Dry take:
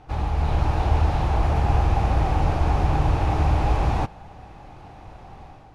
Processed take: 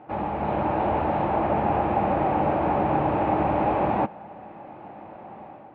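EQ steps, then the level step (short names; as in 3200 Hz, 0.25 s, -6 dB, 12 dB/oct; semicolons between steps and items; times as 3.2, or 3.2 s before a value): speaker cabinet 190–2600 Hz, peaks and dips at 210 Hz +9 dB, 330 Hz +6 dB, 580 Hz +9 dB, 890 Hz +4 dB; 0.0 dB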